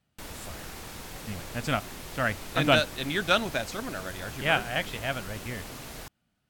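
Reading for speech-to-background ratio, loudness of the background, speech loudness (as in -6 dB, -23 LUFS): 12.5 dB, -41.0 LUFS, -28.5 LUFS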